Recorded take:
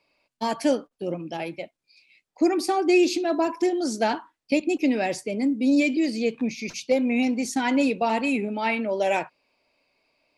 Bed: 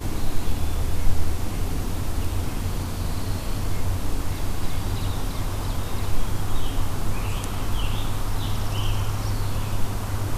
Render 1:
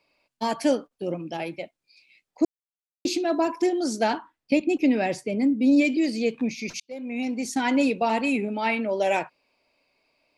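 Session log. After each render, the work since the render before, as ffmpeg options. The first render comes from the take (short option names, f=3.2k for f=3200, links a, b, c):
-filter_complex "[0:a]asettb=1/sr,asplit=3[a][b][c];[a]atrim=end=4.174[d];[b]atrim=start=4.17:end=5.85,asetpts=PTS-STARTPTS,afade=t=in:d=0.004:c=qsin,afade=t=out:st=1.676:d=0.004:c=qsin,bass=f=250:g=4,treble=f=4k:g=-5[e];[c]atrim=start=5.846[f];[d][e]acrossfade=d=0.004:c1=hsin:c2=qsin[g];[g][f]acrossfade=d=0.004:c1=qsin:c2=hsin,asplit=4[h][i][j][k];[h]atrim=end=2.45,asetpts=PTS-STARTPTS,afade=t=out:st=2.446:d=0.004:c=hsin[l];[i]atrim=start=2.45:end=3.05,asetpts=PTS-STARTPTS,volume=0[m];[j]atrim=start=3.05:end=6.8,asetpts=PTS-STARTPTS,afade=t=in:d=0.004:c=hsin,afade=t=out:st=3.746:d=0.004:c=hsin[n];[k]atrim=start=6.8,asetpts=PTS-STARTPTS,afade=t=in:d=0.82[o];[l][m][n][o]concat=n=4:v=0:a=1"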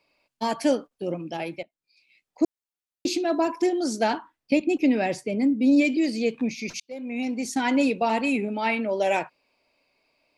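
-filter_complex "[0:a]asplit=2[a][b];[a]atrim=end=1.63,asetpts=PTS-STARTPTS,afade=t=out:st=1.626:d=0.004:c=hsin:silence=0.11885[c];[b]atrim=start=1.63,asetpts=PTS-STARTPTS,afade=t=in:d=0.8:silence=0.11885[d];[c][d]concat=n=2:v=0:a=1"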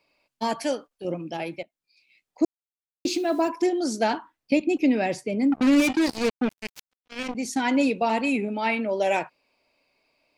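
-filter_complex "[0:a]asettb=1/sr,asplit=3[a][b][c];[a]atrim=end=0.634[d];[b]atrim=start=0.63:end=1.05,asetpts=PTS-STARTPTS,afade=t=in:d=0.004:c=qsin,afade=t=out:st=0.416:d=0.004:c=qsin,equalizer=f=190:w=0.44:g=-8.5[e];[c]atrim=start=1.046[f];[d][e]acrossfade=d=0.004:c1=hsin:c2=qsin[g];[g][f]acrossfade=d=0.004:c1=qsin:c2=hsin,asettb=1/sr,asplit=3[h][i][j];[h]atrim=end=2.444[k];[i]atrim=start=2.44:end=3.49,asetpts=PTS-STARTPTS,afade=t=in:d=0.004:c=qsin,afade=t=out:st=1.046:d=0.004:c=qsin,acrusher=bits=7:mix=0:aa=0.5[l];[j]atrim=start=3.486[m];[k][l]acrossfade=d=0.004:c1=hsin:c2=qsin[n];[n][m]acrossfade=d=0.004:c1=qsin:c2=hsin,asettb=1/sr,asplit=3[o][p][q];[o]atrim=end=5.524[r];[p]atrim=start=5.52:end=7.35,asetpts=PTS-STARTPTS,afade=t=in:d=0.004:c=qsin,afade=t=out:st=1.826:d=0.004:c=qsin,acrusher=bits=3:mix=0:aa=0.5[s];[q]atrim=start=7.346[t];[r][s]acrossfade=d=0.004:c1=hsin:c2=qsin[u];[u][t]acrossfade=d=0.004:c1=qsin:c2=hsin"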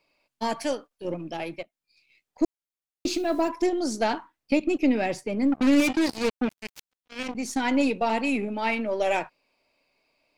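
-af "aeval=exprs='if(lt(val(0),0),0.708*val(0),val(0))':c=same"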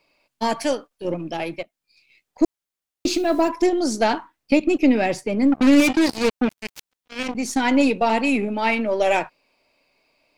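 -af "volume=5.5dB"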